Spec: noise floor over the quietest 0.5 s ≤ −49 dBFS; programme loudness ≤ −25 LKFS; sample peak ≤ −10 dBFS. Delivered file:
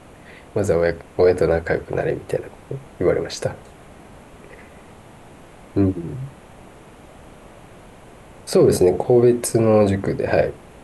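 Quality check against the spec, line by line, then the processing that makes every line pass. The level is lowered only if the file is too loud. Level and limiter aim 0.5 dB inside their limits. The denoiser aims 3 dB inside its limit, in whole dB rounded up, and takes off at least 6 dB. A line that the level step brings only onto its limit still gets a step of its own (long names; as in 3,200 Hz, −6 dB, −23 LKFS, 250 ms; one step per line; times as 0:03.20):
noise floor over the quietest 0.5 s −44 dBFS: out of spec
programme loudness −19.5 LKFS: out of spec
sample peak −5.5 dBFS: out of spec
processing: level −6 dB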